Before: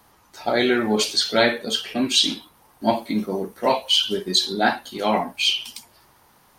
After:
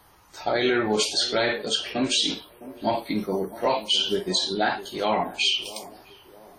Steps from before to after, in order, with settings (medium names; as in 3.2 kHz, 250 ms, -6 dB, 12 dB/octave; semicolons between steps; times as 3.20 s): peaking EQ 230 Hz -10 dB 0.25 oct; peak limiter -13 dBFS, peak gain reduction 8.5 dB; bass shelf 81 Hz +5 dB; band-passed feedback delay 659 ms, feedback 47%, band-pass 380 Hz, level -15 dB; WMA 32 kbps 44.1 kHz